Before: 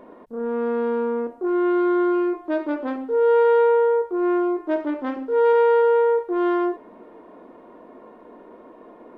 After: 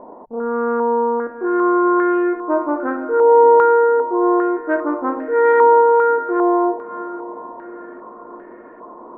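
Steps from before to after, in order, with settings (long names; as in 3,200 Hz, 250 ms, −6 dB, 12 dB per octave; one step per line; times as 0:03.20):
adaptive Wiener filter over 9 samples
feedback delay with all-pass diffusion 478 ms, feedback 55%, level −14 dB
low-pass on a step sequencer 2.5 Hz 860–1,800 Hz
level +2.5 dB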